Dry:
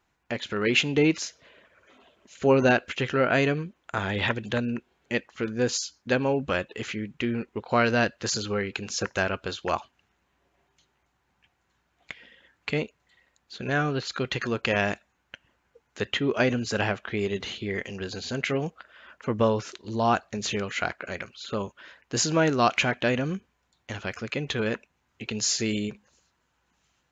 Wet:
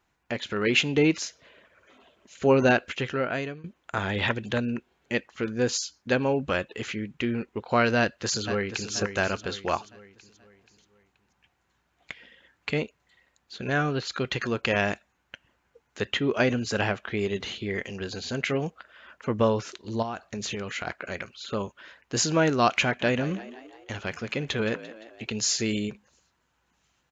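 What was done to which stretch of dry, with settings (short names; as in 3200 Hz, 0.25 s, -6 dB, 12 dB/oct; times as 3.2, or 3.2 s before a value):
2.84–3.64 fade out linear, to -18 dB
7.99–8.92 echo throw 0.48 s, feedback 45%, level -9 dB
20.02–20.87 compressor 16:1, threshold -28 dBFS
22.82–25.25 frequency-shifting echo 0.172 s, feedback 56%, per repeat +57 Hz, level -15.5 dB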